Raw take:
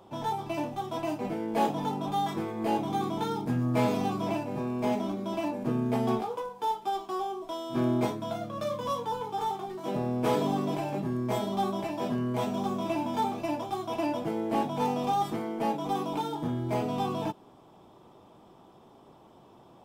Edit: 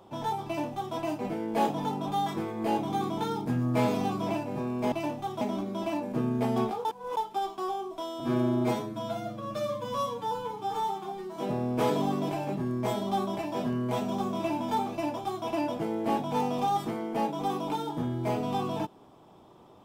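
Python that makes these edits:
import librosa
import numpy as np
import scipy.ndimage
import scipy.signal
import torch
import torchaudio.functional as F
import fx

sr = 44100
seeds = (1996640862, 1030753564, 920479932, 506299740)

y = fx.edit(x, sr, fx.duplicate(start_s=0.46, length_s=0.49, to_s=4.92),
    fx.reverse_span(start_s=6.36, length_s=0.32),
    fx.stretch_span(start_s=7.71, length_s=2.11, factor=1.5), tone=tone)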